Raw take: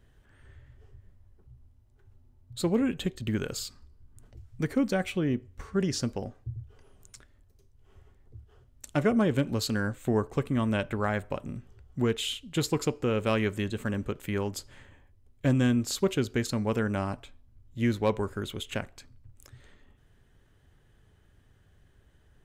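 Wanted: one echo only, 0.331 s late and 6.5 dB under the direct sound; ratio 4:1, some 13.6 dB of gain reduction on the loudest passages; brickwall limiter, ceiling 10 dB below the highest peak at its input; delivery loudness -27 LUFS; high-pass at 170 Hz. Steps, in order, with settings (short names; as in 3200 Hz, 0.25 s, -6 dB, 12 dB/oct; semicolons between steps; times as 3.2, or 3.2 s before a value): HPF 170 Hz; compressor 4:1, threshold -38 dBFS; limiter -30.5 dBFS; echo 0.331 s -6.5 dB; gain +15.5 dB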